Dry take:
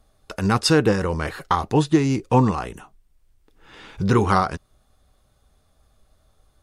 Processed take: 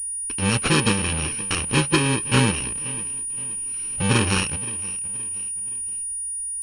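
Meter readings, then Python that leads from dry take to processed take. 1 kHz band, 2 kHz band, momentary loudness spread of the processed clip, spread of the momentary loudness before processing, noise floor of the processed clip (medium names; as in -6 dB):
-6.0 dB, +5.0 dB, 7 LU, 11 LU, -29 dBFS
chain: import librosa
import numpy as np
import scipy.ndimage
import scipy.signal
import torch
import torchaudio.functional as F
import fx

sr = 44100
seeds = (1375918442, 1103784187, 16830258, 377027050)

p1 = fx.bit_reversed(x, sr, seeds[0], block=64)
p2 = p1 + fx.echo_feedback(p1, sr, ms=521, feedback_pct=41, wet_db=-18.0, dry=0)
y = fx.pwm(p2, sr, carrier_hz=9600.0)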